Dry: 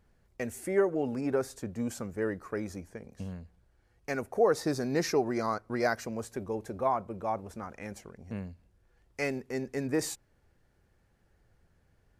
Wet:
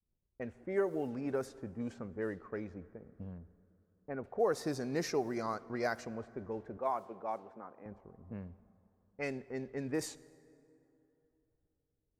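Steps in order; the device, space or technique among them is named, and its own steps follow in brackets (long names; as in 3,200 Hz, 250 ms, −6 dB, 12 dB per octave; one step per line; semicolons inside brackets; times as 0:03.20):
cassette deck with a dynamic noise filter (white noise bed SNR 32 dB; low-pass that shuts in the quiet parts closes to 380 Hz, open at −25.5 dBFS)
0:06.77–0:07.86: high-pass filter 270 Hz 12 dB per octave
downward expander −57 dBFS
0:03.38–0:04.24: Bessel low-pass filter 1,100 Hz, order 2
dense smooth reverb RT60 3.3 s, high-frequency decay 0.45×, DRR 18.5 dB
level −6 dB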